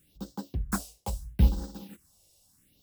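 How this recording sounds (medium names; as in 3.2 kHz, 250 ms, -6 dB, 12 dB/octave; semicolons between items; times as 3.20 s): phasing stages 4, 0.76 Hz, lowest notch 240–2400 Hz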